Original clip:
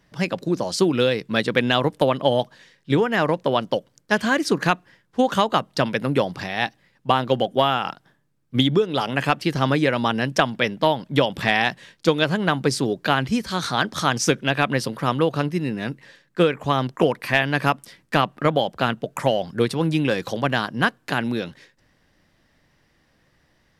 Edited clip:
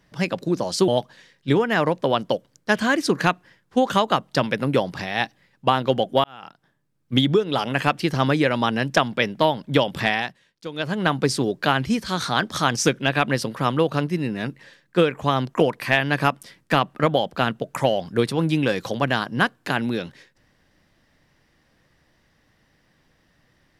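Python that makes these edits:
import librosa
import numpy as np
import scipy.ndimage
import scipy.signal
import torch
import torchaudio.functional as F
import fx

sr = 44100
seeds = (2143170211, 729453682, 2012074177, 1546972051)

y = fx.edit(x, sr, fx.cut(start_s=0.88, length_s=1.42),
    fx.fade_in_span(start_s=7.66, length_s=0.9),
    fx.fade_down_up(start_s=11.42, length_s=1.07, db=-16.0, fade_s=0.4), tone=tone)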